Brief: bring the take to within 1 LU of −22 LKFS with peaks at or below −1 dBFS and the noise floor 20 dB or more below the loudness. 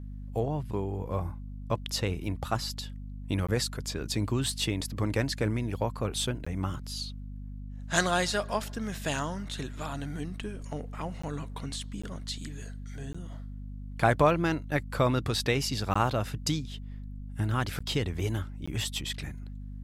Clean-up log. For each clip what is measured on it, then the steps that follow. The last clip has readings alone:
number of dropouts 8; longest dropout 15 ms; mains hum 50 Hz; hum harmonics up to 250 Hz; level of the hum −37 dBFS; integrated loudness −31.5 LKFS; sample peak −9.5 dBFS; target loudness −22.0 LKFS
→ repair the gap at 0:03.47/0:06.45/0:11.22/0:12.02/0:13.13/0:15.94/0:17.79/0:18.66, 15 ms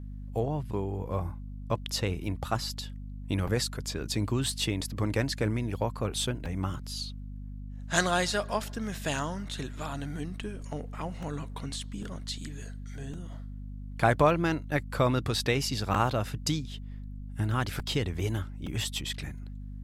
number of dropouts 0; mains hum 50 Hz; hum harmonics up to 250 Hz; level of the hum −37 dBFS
→ hum removal 50 Hz, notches 5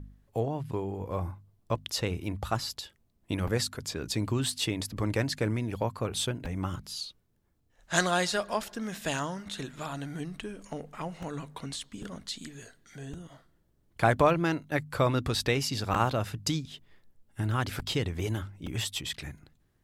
mains hum none found; integrated loudness −31.5 LKFS; sample peak −9.5 dBFS; target loudness −22.0 LKFS
→ level +9.5 dB
brickwall limiter −1 dBFS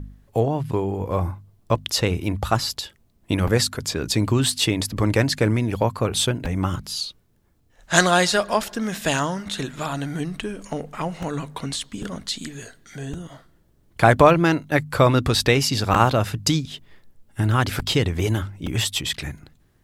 integrated loudness −22.0 LKFS; sample peak −1.0 dBFS; background noise floor −60 dBFS

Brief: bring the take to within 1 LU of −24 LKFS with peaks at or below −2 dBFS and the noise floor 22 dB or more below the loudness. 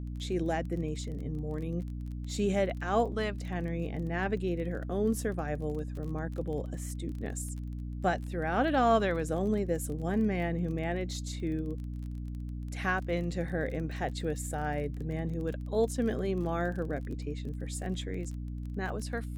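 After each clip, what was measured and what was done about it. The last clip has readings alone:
crackle rate 25 per second; mains hum 60 Hz; hum harmonics up to 300 Hz; level of the hum −35 dBFS; integrated loudness −33.0 LKFS; sample peak −13.5 dBFS; target loudness −24.0 LKFS
→ click removal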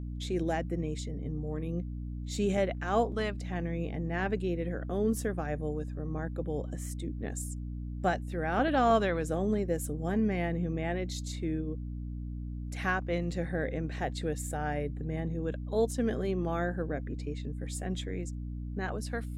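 crackle rate 0 per second; mains hum 60 Hz; hum harmonics up to 300 Hz; level of the hum −35 dBFS
→ mains-hum notches 60/120/180/240/300 Hz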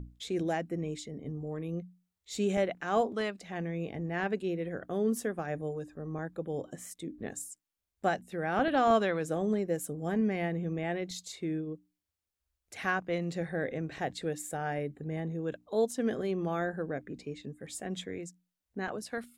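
mains hum none found; integrated loudness −34.0 LKFS; sample peak −14.0 dBFS; target loudness −24.0 LKFS
→ level +10 dB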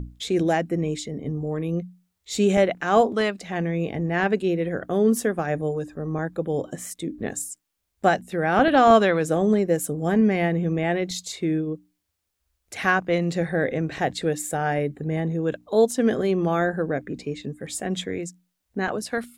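integrated loudness −24.0 LKFS; sample peak −4.0 dBFS; background noise floor −78 dBFS

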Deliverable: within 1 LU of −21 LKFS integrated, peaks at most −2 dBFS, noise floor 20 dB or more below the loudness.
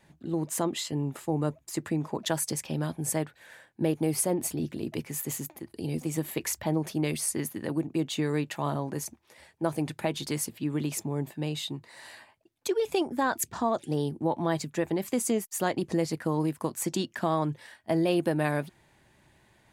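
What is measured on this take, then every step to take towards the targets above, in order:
integrated loudness −30.5 LKFS; sample peak −13.0 dBFS; target loudness −21.0 LKFS
→ level +9.5 dB

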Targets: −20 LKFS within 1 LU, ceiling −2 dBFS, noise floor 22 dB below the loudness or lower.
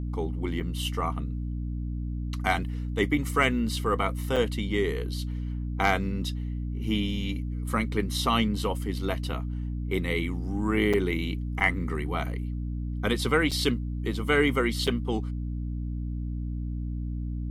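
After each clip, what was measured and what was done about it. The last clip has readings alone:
number of dropouts 6; longest dropout 6.0 ms; mains hum 60 Hz; hum harmonics up to 300 Hz; level of the hum −29 dBFS; integrated loudness −28.5 LKFS; sample peak −8.0 dBFS; target loudness −20.0 LKFS
→ repair the gap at 0:00.60/0:04.36/0:10.93/0:11.60/0:13.51/0:14.87, 6 ms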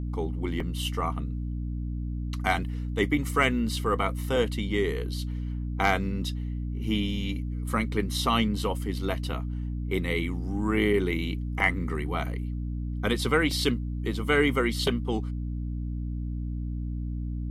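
number of dropouts 0; mains hum 60 Hz; hum harmonics up to 300 Hz; level of the hum −29 dBFS
→ hum removal 60 Hz, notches 5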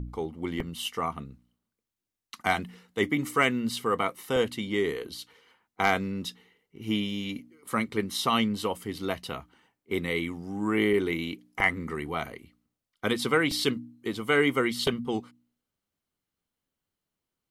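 mains hum none found; integrated loudness −29.0 LKFS; sample peak −9.0 dBFS; target loudness −20.0 LKFS
→ level +9 dB
brickwall limiter −2 dBFS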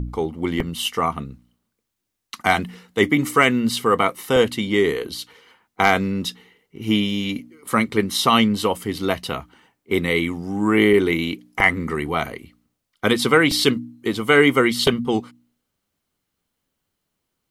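integrated loudness −20.0 LKFS; sample peak −2.0 dBFS; background noise floor −78 dBFS

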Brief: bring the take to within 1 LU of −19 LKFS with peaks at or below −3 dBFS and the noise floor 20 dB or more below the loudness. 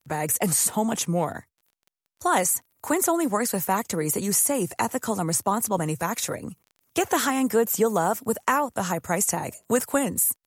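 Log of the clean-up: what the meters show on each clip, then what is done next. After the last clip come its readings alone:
crackle rate 19 per second; integrated loudness −24.0 LKFS; sample peak −9.0 dBFS; target loudness −19.0 LKFS
→ click removal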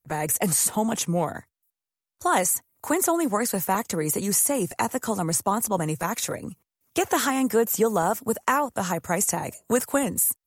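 crackle rate 0.19 per second; integrated loudness −24.0 LKFS; sample peak −9.0 dBFS; target loudness −19.0 LKFS
→ level +5 dB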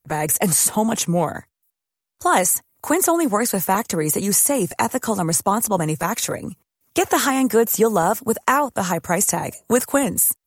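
integrated loudness −19.0 LKFS; sample peak −4.0 dBFS; background noise floor −84 dBFS

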